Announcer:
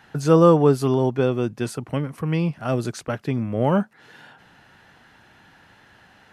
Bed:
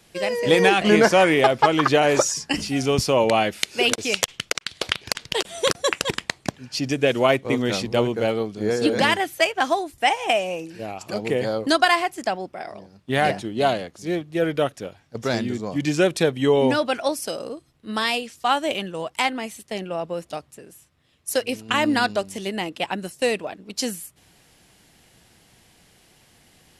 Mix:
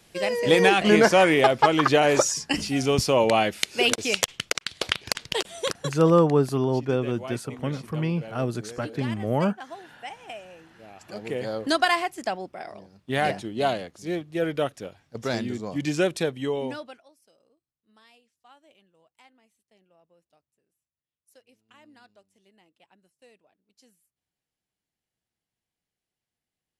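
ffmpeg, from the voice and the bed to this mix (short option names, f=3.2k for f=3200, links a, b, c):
-filter_complex "[0:a]adelay=5700,volume=-4dB[a];[1:a]volume=13.5dB,afade=t=out:st=5.25:d=0.77:silence=0.133352,afade=t=in:st=10.75:d=0.99:silence=0.177828,afade=t=out:st=16:d=1.04:silence=0.0316228[b];[a][b]amix=inputs=2:normalize=0"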